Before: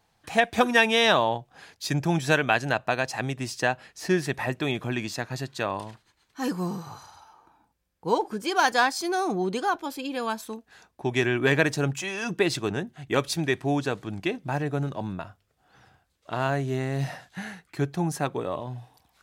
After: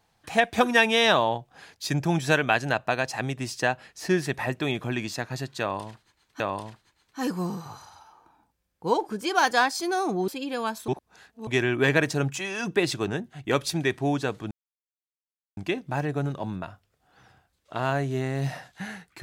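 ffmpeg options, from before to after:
-filter_complex "[0:a]asplit=6[a][b][c][d][e][f];[a]atrim=end=6.402[g];[b]atrim=start=5.608:end=9.492[h];[c]atrim=start=9.908:end=10.512[i];[d]atrim=start=10.508:end=11.102,asetpts=PTS-STARTPTS,areverse[j];[e]atrim=start=11.098:end=14.14,asetpts=PTS-STARTPTS,afade=t=out:st=3.038:d=0.004:c=hsin,apad=pad_dur=1.06[k];[f]atrim=start=14.14,asetpts=PTS-STARTPTS,afade=t=in:d=0.004:c=hsin[l];[g][h]acrossfade=d=0.004:c1=hsin:c2=hsin[m];[m][i]acrossfade=d=0.004:c1=hsin:c2=hsin[n];[n][j]acrossfade=d=0.004:c1=hsin:c2=hsin[o];[k][l]concat=n=2:v=0:a=1[p];[o][p]acrossfade=d=0.004:c1=hsin:c2=hsin"

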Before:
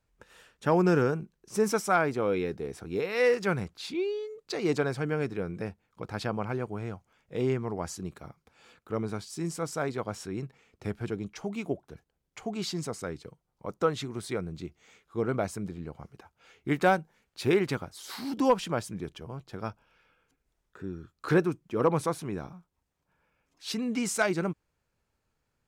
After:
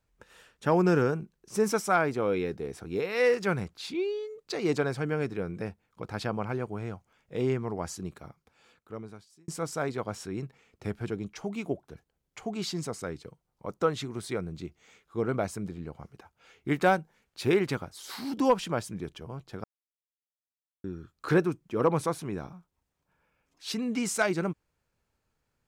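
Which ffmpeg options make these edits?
-filter_complex "[0:a]asplit=4[a][b][c][d];[a]atrim=end=9.48,asetpts=PTS-STARTPTS,afade=t=out:st=8.1:d=1.38[e];[b]atrim=start=9.48:end=19.64,asetpts=PTS-STARTPTS,afade=t=in:d=0.004:c=hsin,afade=t=out:st=10.156:d=0.004:c=hsin[f];[c]atrim=start=19.64:end=20.84,asetpts=PTS-STARTPTS,volume=0[g];[d]atrim=start=20.84,asetpts=PTS-STARTPTS,afade=t=in:d=0.004:c=hsin[h];[e][f][g][h]concat=n=4:v=0:a=1"

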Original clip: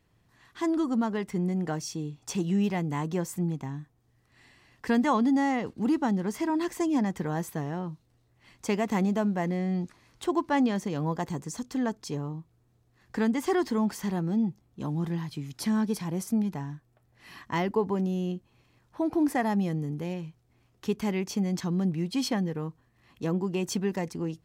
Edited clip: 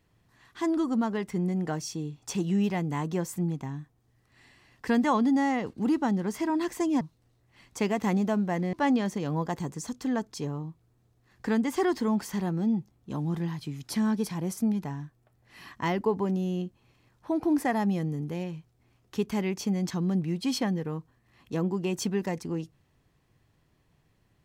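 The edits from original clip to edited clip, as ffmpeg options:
-filter_complex "[0:a]asplit=3[a][b][c];[a]atrim=end=7.012[d];[b]atrim=start=7.888:end=9.612[e];[c]atrim=start=10.428[f];[d][e]acrossfade=d=0.004:c1=hsin:c2=hsin[g];[g][f]acrossfade=d=0.004:c1=hsin:c2=hsin"

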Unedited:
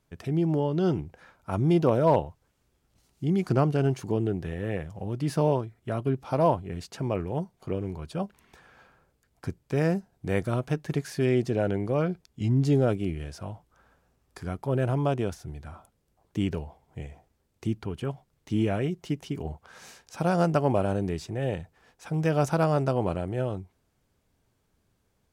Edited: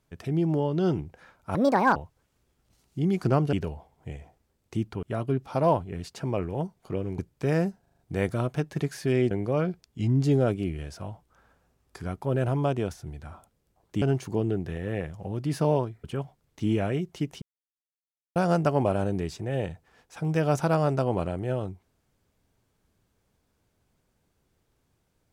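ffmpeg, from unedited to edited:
-filter_complex "[0:a]asplit=15[a][b][c][d][e][f][g][h][i][j][k][l][m][n][o];[a]atrim=end=1.554[p];[b]atrim=start=1.55:end=2.21,asetpts=PTS-STARTPTS,asetrate=71442,aresample=44100[q];[c]atrim=start=2.206:end=3.782[r];[d]atrim=start=16.428:end=17.932[s];[e]atrim=start=5.798:end=7.962[t];[f]atrim=start=9.478:end=10.152[u];[g]atrim=start=10.108:end=10.152[v];[h]atrim=start=10.108:end=10.152[w];[i]atrim=start=10.108:end=10.152[x];[j]atrim=start=10.108:end=11.442[y];[k]atrim=start=11.718:end=16.432[z];[l]atrim=start=3.778:end=5.802[aa];[m]atrim=start=17.928:end=19.31,asetpts=PTS-STARTPTS,afade=t=out:st=1.378:d=0.004:c=hsin[ab];[n]atrim=start=19.31:end=20.25,asetpts=PTS-STARTPTS,volume=0[ac];[o]atrim=start=20.25,asetpts=PTS-STARTPTS,afade=t=in:d=0.004:c=hsin[ad];[p][q]acrossfade=d=0.004:c1=hsin:c2=hsin[ae];[ae][r]acrossfade=d=0.004:c1=hsin:c2=hsin[af];[af][s]acrossfade=d=0.004:c1=hsin:c2=hsin[ag];[ag][t]acrossfade=d=0.004:c1=hsin:c2=hsin[ah];[ah][u]acrossfade=d=0.004:c1=hsin:c2=hsin[ai];[ai][v]acrossfade=d=0.004:c1=hsin:c2=hsin[aj];[aj][w]acrossfade=d=0.004:c1=hsin:c2=hsin[ak];[ak][x]acrossfade=d=0.004:c1=hsin:c2=hsin[al];[al][y]acrossfade=d=0.004:c1=hsin:c2=hsin[am];[am][z]acrossfade=d=0.004:c1=hsin:c2=hsin[an];[an][aa]acrossfade=d=0.004:c1=hsin:c2=hsin[ao];[ab][ac][ad]concat=n=3:v=0:a=1[ap];[ao][ap]acrossfade=d=0.004:c1=hsin:c2=hsin"

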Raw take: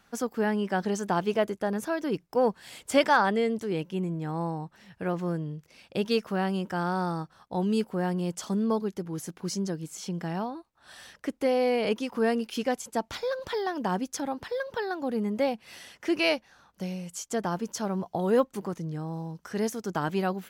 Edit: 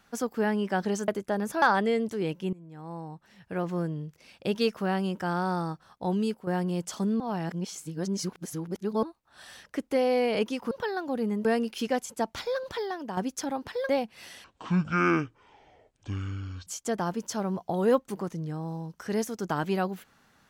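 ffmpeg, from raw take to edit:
-filter_complex "[0:a]asplit=13[a][b][c][d][e][f][g][h][i][j][k][l][m];[a]atrim=end=1.082[n];[b]atrim=start=1.408:end=1.952[o];[c]atrim=start=3.118:end=4.03,asetpts=PTS-STARTPTS,afade=t=out:st=0.908:d=0.004:c=hsin:silence=0.0841395[p];[d]atrim=start=4.03:end=7.97,asetpts=PTS-STARTPTS,afade=t=in:d=1.23:silence=0.0841395,afade=t=out:st=3.62:d=0.32:silence=0.298538[q];[e]atrim=start=7.97:end=8.702,asetpts=PTS-STARTPTS,afade=t=in:d=0.004:c=hsin:silence=0.298538[r];[f]atrim=start=8.698:end=10.532,asetpts=PTS-STARTPTS,areverse[s];[g]atrim=start=10.528:end=12.212[t];[h]atrim=start=14.648:end=15.392[u];[i]atrim=start=12.208:end=13.93,asetpts=PTS-STARTPTS,afade=t=out:st=1.162:d=0.56:silence=0.375837[v];[j]atrim=start=13.93:end=14.652,asetpts=PTS-STARTPTS,afade=t=in:d=0.004:c=hsin:silence=0.375837[w];[k]atrim=start=15.388:end=15.944[x];[l]atrim=start=15.94:end=17.12,asetpts=PTS-STARTPTS,asetrate=23373,aresample=44100[y];[m]atrim=start=17.116[z];[n][o]acrossfade=d=0.004:c1=hsin:c2=hsin[aa];[p][q][r]concat=n=3:v=0:a=1[ab];[aa][ab]acrossfade=d=0.004:c1=hsin:c2=hsin[ac];[ac][s]acrossfade=d=0.004:c1=hsin:c2=hsin[ad];[ad][t]acrossfade=d=0.004:c1=hsin:c2=hsin[ae];[ae][u]acrossfade=d=0.004:c1=hsin:c2=hsin[af];[v][w]concat=n=2:v=0:a=1[ag];[af][ag]acrossfade=d=0.004:c1=hsin:c2=hsin[ah];[ah][x]acrossfade=d=0.004:c1=hsin:c2=hsin[ai];[ai][y]acrossfade=d=0.004:c1=hsin:c2=hsin[aj];[aj][z]acrossfade=d=0.004:c1=hsin:c2=hsin"

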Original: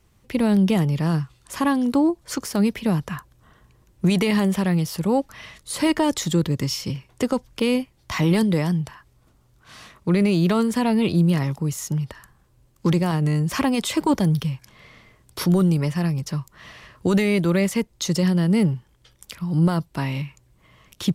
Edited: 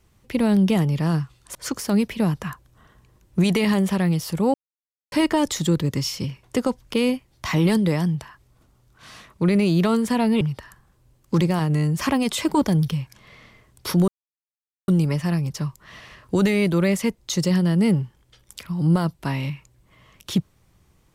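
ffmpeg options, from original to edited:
-filter_complex "[0:a]asplit=6[a][b][c][d][e][f];[a]atrim=end=1.552[g];[b]atrim=start=2.208:end=5.2,asetpts=PTS-STARTPTS,afade=t=out:st=2.988:d=0.004:c=hsin[h];[c]atrim=start=5.2:end=5.78,asetpts=PTS-STARTPTS,volume=0[i];[d]atrim=start=5.78:end=11.072,asetpts=PTS-STARTPTS,afade=t=in:d=0.004:c=hsin[j];[e]atrim=start=11.928:end=15.6,asetpts=PTS-STARTPTS,afade=t=out:st=3.668:d=0.004:c=hsin,apad=pad_dur=0.8[k];[f]atrim=start=15.6,asetpts=PTS-STARTPTS,afade=t=in:d=0.004:c=hsin[l];[h][i][j]concat=n=3:v=0:a=1[m];[g][m]acrossfade=d=0.004:c1=hsin:c2=hsin[n];[k][l]concat=n=2:v=0:a=1[o];[n][o]acrossfade=d=0.004:c1=hsin:c2=hsin"

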